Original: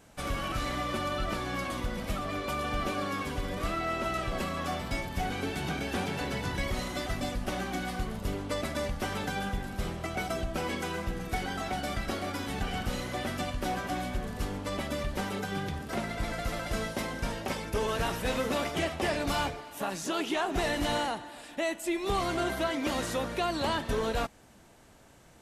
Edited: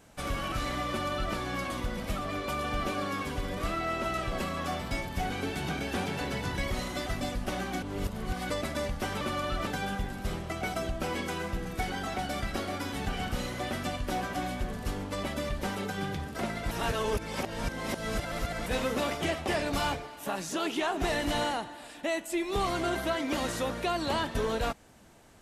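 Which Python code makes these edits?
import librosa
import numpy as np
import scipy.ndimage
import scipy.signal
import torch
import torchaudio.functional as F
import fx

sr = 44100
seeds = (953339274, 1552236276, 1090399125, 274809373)

y = fx.edit(x, sr, fx.duplicate(start_s=0.89, length_s=0.46, to_s=9.21),
    fx.reverse_span(start_s=7.82, length_s=0.68),
    fx.reverse_span(start_s=16.25, length_s=1.95), tone=tone)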